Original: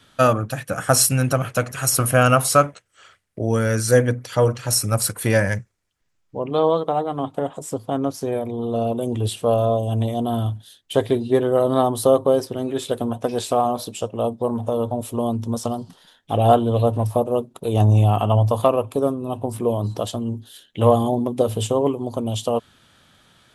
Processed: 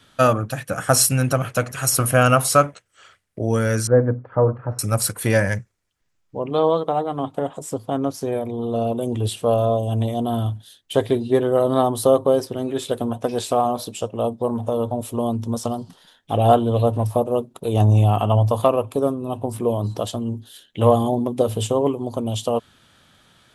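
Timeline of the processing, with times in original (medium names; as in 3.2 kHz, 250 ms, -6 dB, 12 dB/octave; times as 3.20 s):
3.87–4.79 s: low-pass 1.3 kHz 24 dB/octave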